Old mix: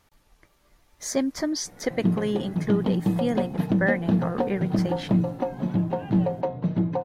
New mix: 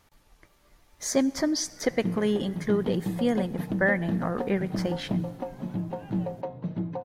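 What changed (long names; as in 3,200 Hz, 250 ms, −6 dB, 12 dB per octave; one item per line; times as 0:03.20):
background −8.0 dB
reverb: on, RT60 1.1 s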